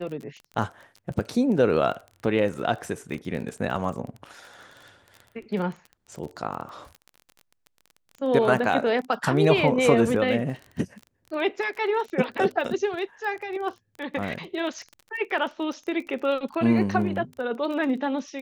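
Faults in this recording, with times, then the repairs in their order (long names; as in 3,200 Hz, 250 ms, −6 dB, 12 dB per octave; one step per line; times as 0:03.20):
surface crackle 25 per second −33 dBFS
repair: click removal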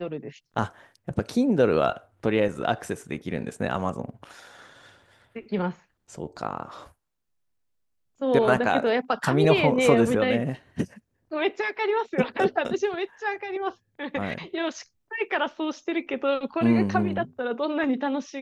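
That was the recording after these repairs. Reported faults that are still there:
none of them is left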